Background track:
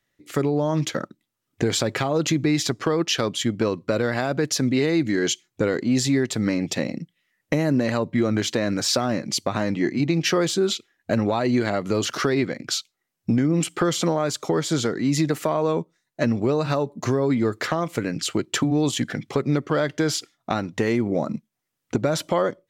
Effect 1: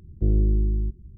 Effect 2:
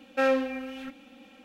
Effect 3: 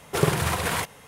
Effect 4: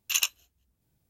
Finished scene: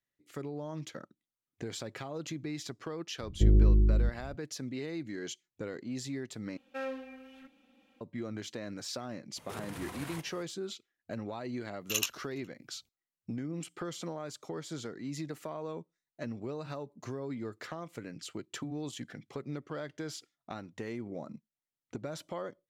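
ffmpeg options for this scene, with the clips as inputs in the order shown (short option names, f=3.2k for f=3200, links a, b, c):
-filter_complex "[0:a]volume=-17.5dB[a];[3:a]acompressor=threshold=-31dB:ratio=6:attack=3.2:release=140:knee=1:detection=peak[b];[4:a]asplit=2[c][d];[d]adelay=414,volume=-29dB,highshelf=f=4k:g=-9.32[e];[c][e]amix=inputs=2:normalize=0[f];[a]asplit=2[g][h];[g]atrim=end=6.574[i];[2:a]atrim=end=1.44,asetpts=PTS-STARTPTS,volume=-14dB[j];[h]atrim=start=8.006[k];[1:a]atrim=end=1.17,asetpts=PTS-STARTPTS,volume=-1.5dB,afade=t=in:d=0.004:c=hsin,afade=t=out:st=1.166:d=0.004:c=hsin,adelay=3190[l];[b]atrim=end=1.07,asetpts=PTS-STARTPTS,volume=-9.5dB,afade=t=in:d=0.004:c=hsin,afade=t=out:st=1.066:d=0.004:c=hsin,adelay=9360[m];[f]atrim=end=1.09,asetpts=PTS-STARTPTS,volume=-6dB,afade=t=in:d=0.004:c=hsin,afade=t=out:st=1.086:d=0.004:c=hsin,adelay=11800[n];[i][j]acrossfade=d=0.004:c1=hsin:c2=hsin[o];[o][k]acrossfade=d=0.004:c1=hsin:c2=hsin[p];[p][l][m][n]amix=inputs=4:normalize=0"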